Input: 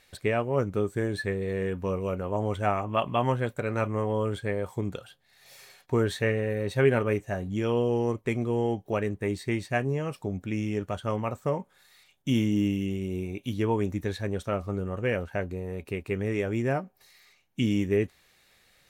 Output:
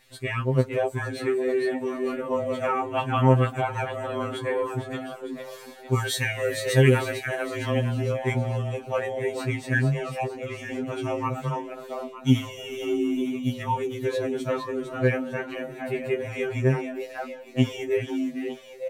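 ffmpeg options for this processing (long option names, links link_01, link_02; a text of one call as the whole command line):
ffmpeg -i in.wav -filter_complex "[0:a]asettb=1/sr,asplit=3[link_01][link_02][link_03];[link_01]atrim=end=5.944[link_04];[link_02]atrim=start=5.94:end=7.11,asetpts=PTS-STARTPTS,afade=type=in:duration=0.004:curve=qsin,afade=type=out:start_time=1.166:duration=0.004:curve=qsin,highshelf=frequency=3300:gain=11.5[link_05];[link_03]atrim=start=7.106[link_06];[link_04][link_05]acrossfade=duration=0.004:curve1=hsin:curve2=qsin[link_07];[link_07][link_06]acrossfade=duration=0.004:curve1=qsin:curve2=hsin,asplit=7[link_08][link_09][link_10][link_11][link_12][link_13][link_14];[link_09]adelay=454,afreqshift=60,volume=-7dB[link_15];[link_10]adelay=908,afreqshift=120,volume=-13.6dB[link_16];[link_11]adelay=1362,afreqshift=180,volume=-20.1dB[link_17];[link_12]adelay=1816,afreqshift=240,volume=-26.7dB[link_18];[link_13]adelay=2270,afreqshift=300,volume=-33.2dB[link_19];[link_14]adelay=2724,afreqshift=360,volume=-39.8dB[link_20];[link_08][link_15][link_16][link_17][link_18][link_19][link_20]amix=inputs=7:normalize=0,afftfilt=real='re*2.45*eq(mod(b,6),0)':imag='im*2.45*eq(mod(b,6),0)':win_size=2048:overlap=0.75,volume=4.5dB" out.wav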